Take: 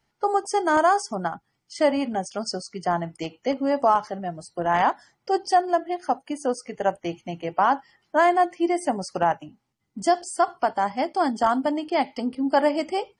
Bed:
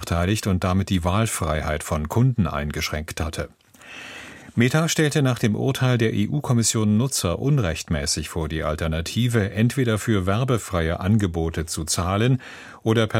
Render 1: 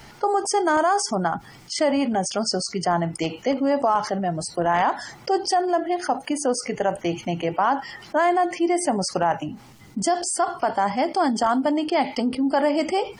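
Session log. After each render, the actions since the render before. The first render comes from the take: peak limiter -12.5 dBFS, peak gain reduction 3.5 dB; level flattener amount 50%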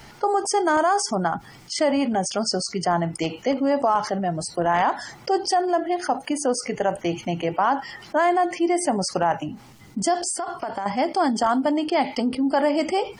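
10.31–10.86 s: compression, threshold -24 dBFS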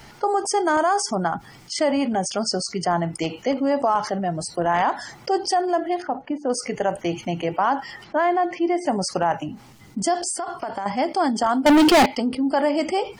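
6.02–6.50 s: tape spacing loss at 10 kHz 42 dB; 8.04–8.86 s: distance through air 150 m; 11.66–12.06 s: waveshaping leveller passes 5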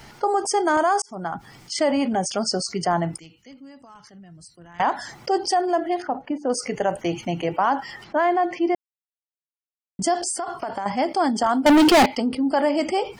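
1.02–1.72 s: fade in equal-power; 3.19–4.80 s: amplifier tone stack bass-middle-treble 6-0-2; 8.75–9.99 s: mute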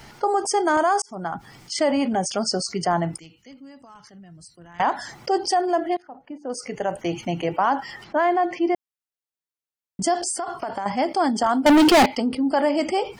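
5.97–7.24 s: fade in, from -23 dB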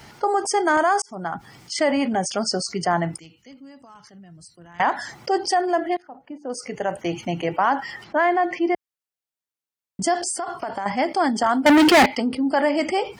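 high-pass 45 Hz; dynamic bell 1.9 kHz, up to +6 dB, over -39 dBFS, Q 1.9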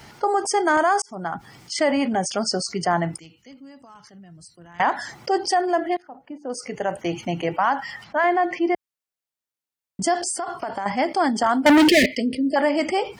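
7.58–8.24 s: peaking EQ 370 Hz -14.5 dB 0.54 oct; 11.88–12.56 s: brick-wall FIR band-stop 670–1700 Hz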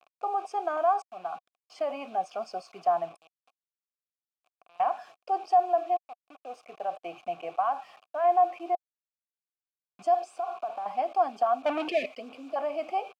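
bit crusher 6-bit; vowel filter a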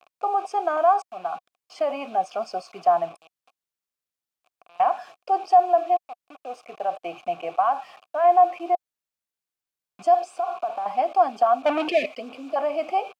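trim +6 dB

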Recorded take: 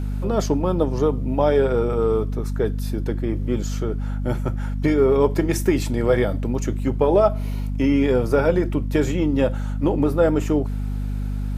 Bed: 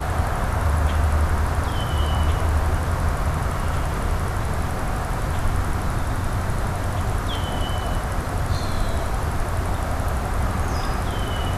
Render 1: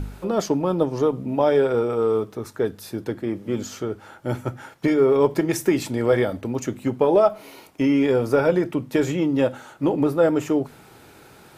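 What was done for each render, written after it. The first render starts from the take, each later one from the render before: de-hum 50 Hz, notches 5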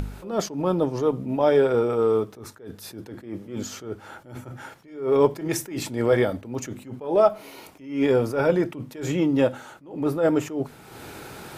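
upward compressor, threshold -30 dBFS; attacks held to a fixed rise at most 120 dB/s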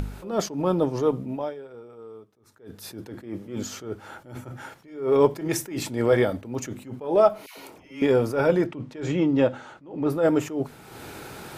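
1.15–2.85 s: dip -22 dB, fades 0.40 s; 7.46–8.02 s: phase dispersion lows, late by 122 ms, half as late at 760 Hz; 8.66–10.10 s: distance through air 88 m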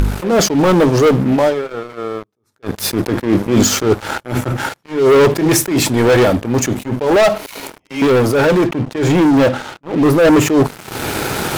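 waveshaping leveller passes 5; gain riding within 4 dB 2 s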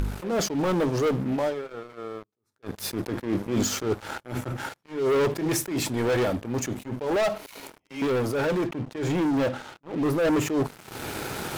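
trim -13 dB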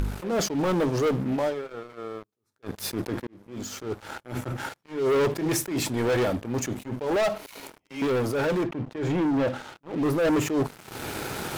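3.27–4.51 s: fade in; 8.63–9.48 s: treble shelf 4.6 kHz -10 dB

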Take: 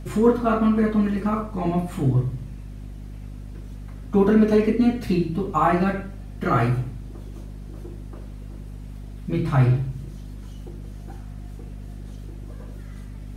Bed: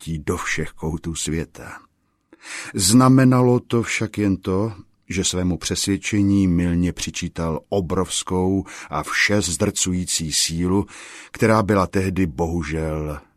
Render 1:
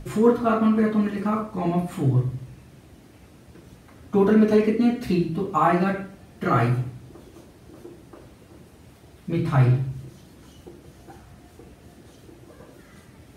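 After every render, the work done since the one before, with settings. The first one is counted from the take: hum notches 50/100/150/200/250 Hz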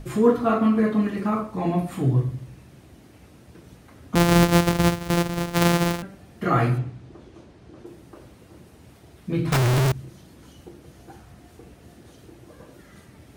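4.15–6.03 s: sorted samples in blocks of 256 samples; 6.78–7.86 s: distance through air 79 m; 9.52–9.92 s: one-bit comparator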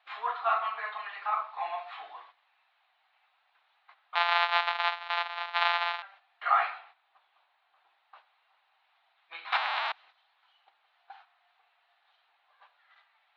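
Chebyshev band-pass 760–4000 Hz, order 4; gate -54 dBFS, range -10 dB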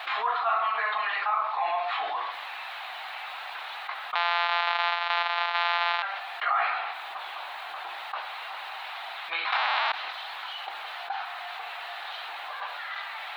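peak limiter -16.5 dBFS, peak gain reduction 8 dB; level flattener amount 70%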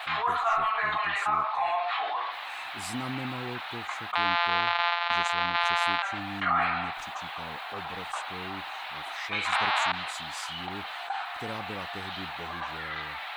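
add bed -22.5 dB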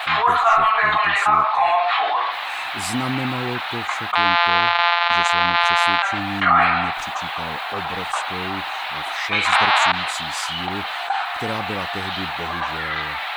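trim +10.5 dB; peak limiter -3 dBFS, peak gain reduction 3 dB

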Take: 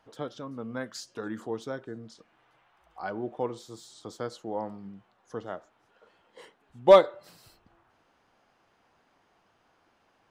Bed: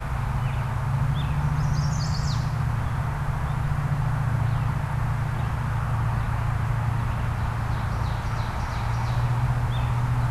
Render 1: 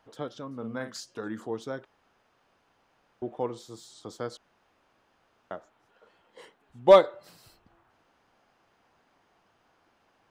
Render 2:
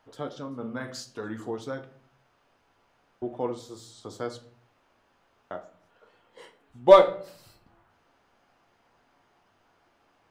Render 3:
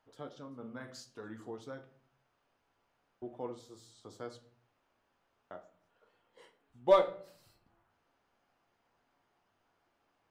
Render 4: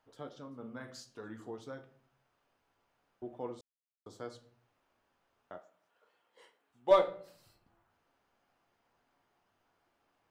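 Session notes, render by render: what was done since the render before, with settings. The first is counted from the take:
0.57–1.00 s: doubling 45 ms -7.5 dB; 1.85–3.22 s: room tone; 4.37–5.51 s: room tone
simulated room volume 51 m³, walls mixed, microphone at 0.32 m
trim -10.5 dB
3.61–4.06 s: mute; 5.58–6.91 s: high-pass 510 Hz 6 dB/octave

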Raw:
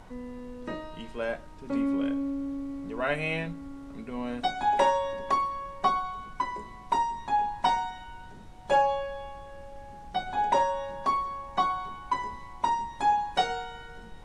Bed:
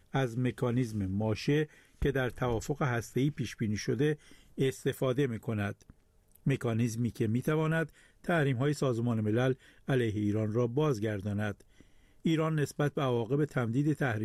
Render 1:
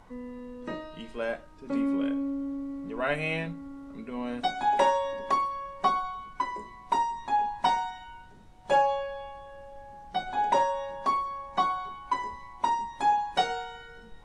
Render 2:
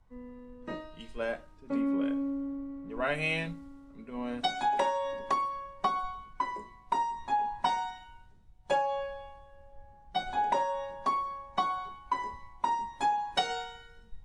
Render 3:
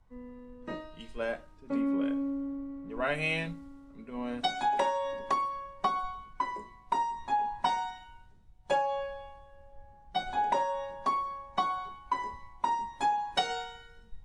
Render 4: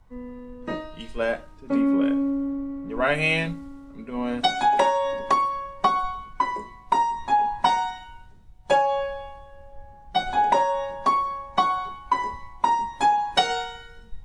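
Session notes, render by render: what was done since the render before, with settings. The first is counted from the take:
noise print and reduce 6 dB
compression 12:1, threshold -26 dBFS, peak gain reduction 9 dB; three bands expanded up and down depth 70%
no audible change
trim +8.5 dB

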